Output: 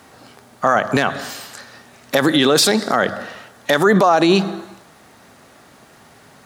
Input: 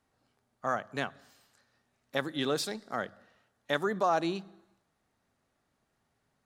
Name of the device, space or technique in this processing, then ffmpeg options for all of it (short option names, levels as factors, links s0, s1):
loud club master: -af "acompressor=threshold=0.02:ratio=2,asoftclip=type=hard:threshold=0.0708,alimiter=level_in=50.1:limit=0.891:release=50:level=0:latency=1,highpass=f=170:p=1,volume=0.708"